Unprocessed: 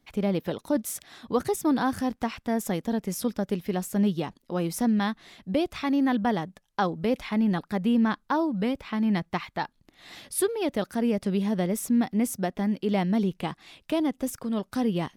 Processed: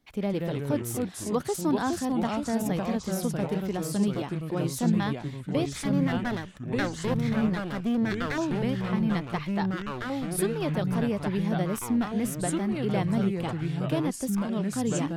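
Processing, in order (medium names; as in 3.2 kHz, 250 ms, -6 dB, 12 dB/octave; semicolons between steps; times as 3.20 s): 5.65–8.38 s: comb filter that takes the minimum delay 0.53 ms; ever faster or slower copies 134 ms, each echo -3 st, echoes 3; trim -3 dB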